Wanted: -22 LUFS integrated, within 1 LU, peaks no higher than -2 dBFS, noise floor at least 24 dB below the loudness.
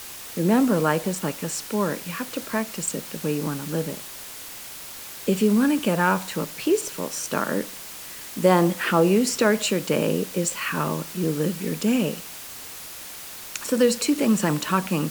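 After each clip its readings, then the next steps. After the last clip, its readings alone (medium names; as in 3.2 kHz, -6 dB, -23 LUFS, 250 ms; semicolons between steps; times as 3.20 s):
noise floor -39 dBFS; noise floor target -48 dBFS; loudness -23.5 LUFS; peak level -4.0 dBFS; loudness target -22.0 LUFS
-> noise print and reduce 9 dB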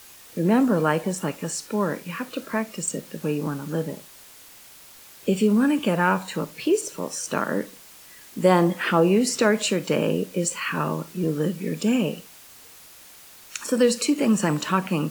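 noise floor -48 dBFS; loudness -24.0 LUFS; peak level -4.5 dBFS; loudness target -22.0 LUFS
-> trim +2 dB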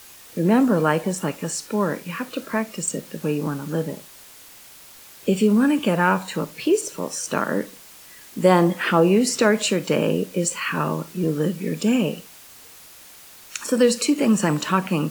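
loudness -22.0 LUFS; peak level -2.5 dBFS; noise floor -46 dBFS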